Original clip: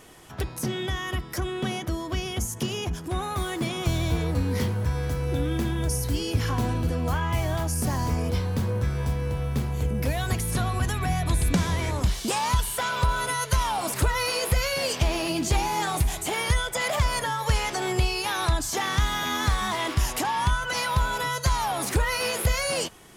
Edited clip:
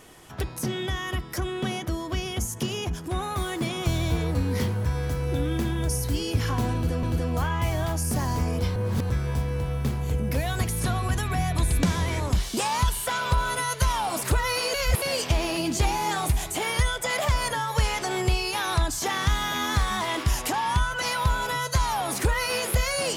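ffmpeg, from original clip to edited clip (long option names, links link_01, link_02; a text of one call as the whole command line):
ffmpeg -i in.wav -filter_complex "[0:a]asplit=6[link_01][link_02][link_03][link_04][link_05][link_06];[link_01]atrim=end=7.032[link_07];[link_02]atrim=start=6.738:end=8.472[link_08];[link_03]atrim=start=8.468:end=8.812,asetpts=PTS-STARTPTS,areverse[link_09];[link_04]atrim=start=8.808:end=14.452[link_10];[link_05]atrim=start=14.448:end=14.732,asetpts=PTS-STARTPTS,areverse[link_11];[link_06]atrim=start=14.728[link_12];[link_07][link_08]acrossfade=duration=0.004:curve1=hsin:curve2=hsin[link_13];[link_13][link_09]acrossfade=duration=0.004:curve1=hsin:curve2=hsin[link_14];[link_14][link_10]acrossfade=duration=0.004:curve1=hsin:curve2=hsin[link_15];[link_15][link_11]acrossfade=duration=0.004:curve1=hsin:curve2=hsin[link_16];[link_16][link_12]acrossfade=duration=0.004:curve1=hsin:curve2=hsin" out.wav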